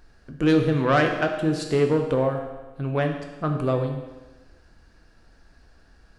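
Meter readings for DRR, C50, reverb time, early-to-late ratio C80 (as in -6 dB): 3.0 dB, 6.0 dB, 1.2 s, 7.5 dB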